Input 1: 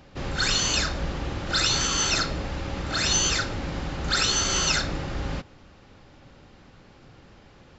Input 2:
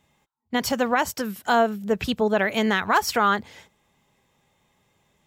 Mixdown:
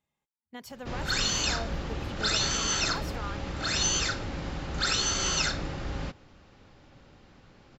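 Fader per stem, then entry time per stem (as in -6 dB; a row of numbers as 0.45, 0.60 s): -4.0, -19.5 dB; 0.70, 0.00 s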